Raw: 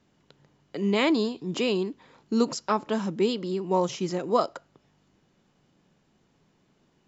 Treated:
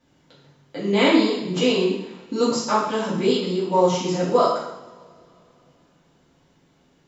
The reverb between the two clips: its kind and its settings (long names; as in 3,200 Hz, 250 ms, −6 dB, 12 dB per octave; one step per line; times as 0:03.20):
coupled-rooms reverb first 0.79 s, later 3.1 s, from −25 dB, DRR −8.5 dB
level −2.5 dB